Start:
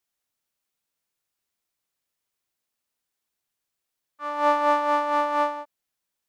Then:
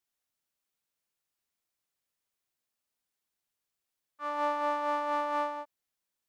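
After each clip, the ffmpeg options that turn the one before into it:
ffmpeg -i in.wav -af "acompressor=threshold=-22dB:ratio=6,volume=-4dB" out.wav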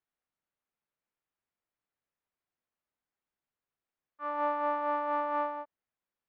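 ffmpeg -i in.wav -af "lowpass=2000" out.wav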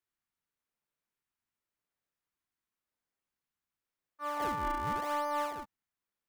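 ffmpeg -i in.wav -filter_complex "[0:a]bandreject=frequency=790:width=26,acrossover=split=650[link_01][link_02];[link_01]acrusher=samples=40:mix=1:aa=0.000001:lfo=1:lforange=64:lforate=0.9[link_03];[link_03][link_02]amix=inputs=2:normalize=0,asoftclip=type=tanh:threshold=-23dB" out.wav

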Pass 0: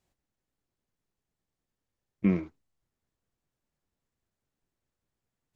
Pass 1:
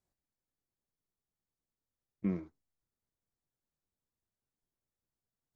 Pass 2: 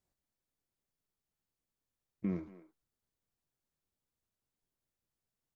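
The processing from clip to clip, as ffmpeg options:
ffmpeg -i in.wav -af "equalizer=frequency=2700:width_type=o:width=0.66:gain=-9.5,volume=-8.5dB" out.wav
ffmpeg -i in.wav -filter_complex "[0:a]alimiter=level_in=2dB:limit=-24dB:level=0:latency=1:release=99,volume=-2dB,asplit=2[link_01][link_02];[link_02]adelay=230,highpass=300,lowpass=3400,asoftclip=type=hard:threshold=-36dB,volume=-14dB[link_03];[link_01][link_03]amix=inputs=2:normalize=0,volume=1dB" out.wav

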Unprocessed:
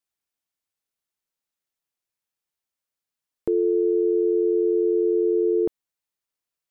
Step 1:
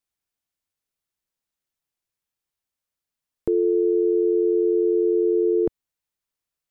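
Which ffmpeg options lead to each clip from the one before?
ffmpeg -i in.wav -af "lowshelf=frequency=140:gain=8" out.wav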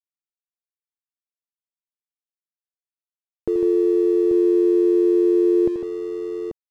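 ffmpeg -i in.wav -af "aecho=1:1:83|152|837:0.316|0.422|0.447,aeval=exprs='sgn(val(0))*max(abs(val(0))-0.00668,0)':channel_layout=same" out.wav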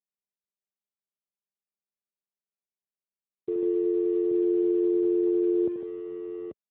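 ffmpeg -i in.wav -af "volume=-7dB" -ar 8000 -c:a libopencore_amrnb -b:a 12200 out.amr

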